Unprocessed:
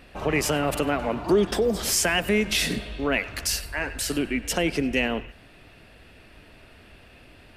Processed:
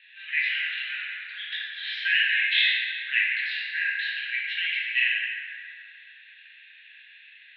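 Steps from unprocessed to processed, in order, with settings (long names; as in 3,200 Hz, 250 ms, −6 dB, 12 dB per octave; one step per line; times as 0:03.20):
Chebyshev band-pass filter 1,600–4,000 Hz, order 5
dense smooth reverb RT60 2.9 s, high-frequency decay 0.4×, DRR −6.5 dB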